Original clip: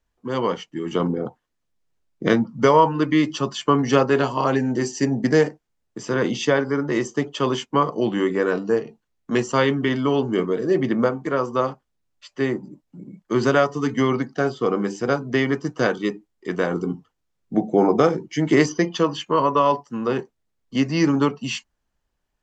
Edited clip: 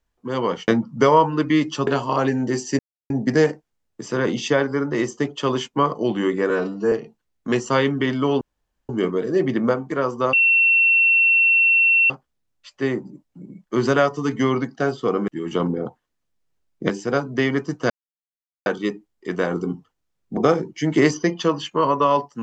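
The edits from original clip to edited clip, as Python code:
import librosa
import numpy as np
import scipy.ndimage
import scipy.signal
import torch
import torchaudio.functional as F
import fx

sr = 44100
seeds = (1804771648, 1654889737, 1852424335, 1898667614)

y = fx.edit(x, sr, fx.move(start_s=0.68, length_s=1.62, to_s=14.86),
    fx.cut(start_s=3.49, length_s=0.66),
    fx.insert_silence(at_s=5.07, length_s=0.31),
    fx.stretch_span(start_s=8.47, length_s=0.28, factor=1.5),
    fx.insert_room_tone(at_s=10.24, length_s=0.48),
    fx.insert_tone(at_s=11.68, length_s=1.77, hz=2710.0, db=-12.5),
    fx.insert_silence(at_s=15.86, length_s=0.76),
    fx.cut(start_s=17.57, length_s=0.35), tone=tone)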